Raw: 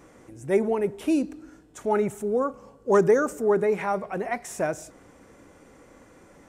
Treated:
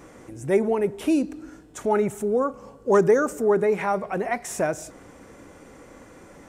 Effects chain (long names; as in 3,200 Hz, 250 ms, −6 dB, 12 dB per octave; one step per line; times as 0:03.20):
in parallel at −1.5 dB: downward compressor, threshold −32 dBFS, peak gain reduction 16 dB